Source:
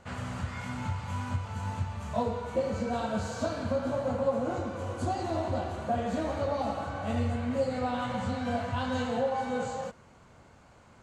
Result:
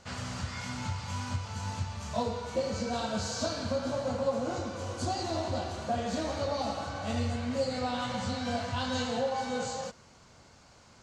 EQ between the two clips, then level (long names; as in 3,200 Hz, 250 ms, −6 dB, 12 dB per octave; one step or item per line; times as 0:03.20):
parametric band 5,200 Hz +14 dB 1.2 octaves
−2.0 dB